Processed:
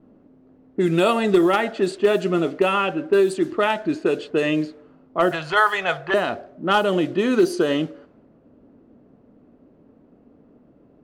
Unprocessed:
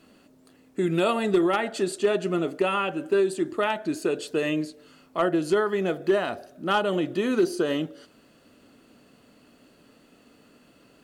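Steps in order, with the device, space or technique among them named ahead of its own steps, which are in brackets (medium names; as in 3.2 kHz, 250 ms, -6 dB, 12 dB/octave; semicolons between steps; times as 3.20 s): 5.31–6.14 s: FFT filter 150 Hz 0 dB, 230 Hz -28 dB, 790 Hz +8 dB; cassette deck with a dynamic noise filter (white noise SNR 28 dB; level-controlled noise filter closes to 500 Hz, open at -19 dBFS); trim +5 dB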